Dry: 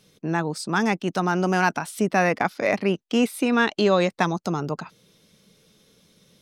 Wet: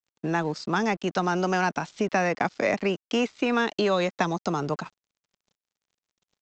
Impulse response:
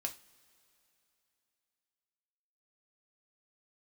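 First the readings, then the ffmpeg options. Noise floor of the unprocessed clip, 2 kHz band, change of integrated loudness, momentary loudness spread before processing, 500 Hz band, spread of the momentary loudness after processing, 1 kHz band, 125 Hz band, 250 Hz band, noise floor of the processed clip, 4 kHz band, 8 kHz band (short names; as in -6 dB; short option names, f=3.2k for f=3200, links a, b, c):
-67 dBFS, -3.5 dB, -3.0 dB, 7 LU, -2.5 dB, 5 LU, -2.5 dB, -4.0 dB, -4.0 dB, under -85 dBFS, -2.0 dB, -4.5 dB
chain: -filter_complex "[0:a]acrossover=split=360|800|2400|4900[a][b][c][d][e];[a]acompressor=threshold=-32dB:ratio=4[f];[b]acompressor=threshold=-29dB:ratio=4[g];[c]acompressor=threshold=-31dB:ratio=4[h];[d]acompressor=threshold=-40dB:ratio=4[i];[e]acompressor=threshold=-46dB:ratio=4[j];[f][g][h][i][j]amix=inputs=5:normalize=0,aresample=16000,aeval=exprs='sgn(val(0))*max(abs(val(0))-0.00299,0)':c=same,aresample=44100,volume=2.5dB"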